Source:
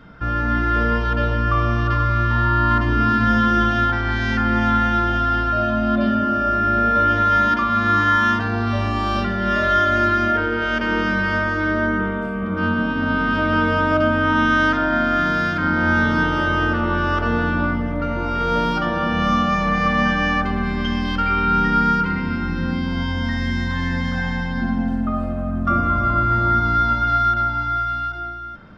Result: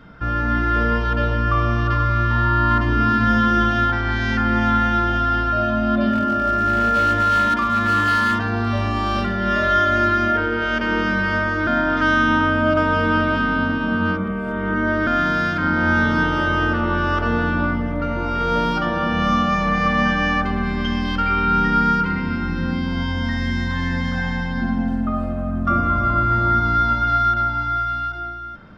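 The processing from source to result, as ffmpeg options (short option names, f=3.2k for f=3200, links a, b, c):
-filter_complex "[0:a]asettb=1/sr,asplit=3[a][b][c];[a]atrim=end=6.114[d];[b]atrim=start=6.11:end=9.38,asetpts=PTS-STARTPTS,afade=t=in:d=0.004:c=qsin,afade=t=out:st=3.266:d=0.004:c=qsin,asoftclip=type=hard:threshold=-13dB[e];[c]atrim=start=9.376[f];[d][e]acrossfade=d=0.004:c1=hsin:c2=qsin[g];[g][f]acrossfade=d=0.004:c1=qsin:c2=hsin,asplit=3[h][i][j];[h]atrim=end=11.672[k];[i]atrim=start=11.668:end=15.072,asetpts=PTS-STARTPTS,areverse[l];[j]atrim=start=15.068[m];[k][l]acrossfade=d=0.004:c1=hsin:c2=hsin[n];[n][m]acrossfade=d=0.004:c1=hsin:c2=hsin"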